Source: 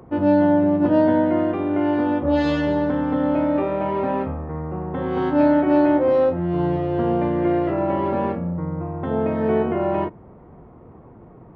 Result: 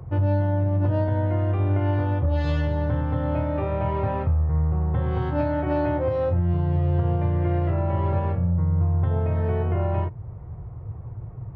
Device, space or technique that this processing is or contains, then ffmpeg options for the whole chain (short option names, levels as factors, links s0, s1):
car stereo with a boomy subwoofer: -af "lowshelf=f=160:t=q:w=3:g=13,alimiter=limit=0.266:level=0:latency=1:release=339,volume=0.708"